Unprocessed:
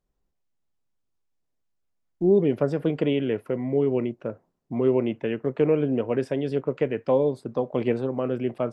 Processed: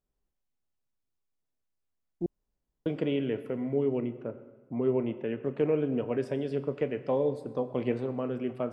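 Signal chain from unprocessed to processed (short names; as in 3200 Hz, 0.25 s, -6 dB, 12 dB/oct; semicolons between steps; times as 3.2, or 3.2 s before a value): 3.98–5.43 high shelf 3200 Hz -8.5 dB; reverb RT60 1.4 s, pre-delay 6 ms, DRR 9.5 dB; 2.26–2.86 room tone; gain -6 dB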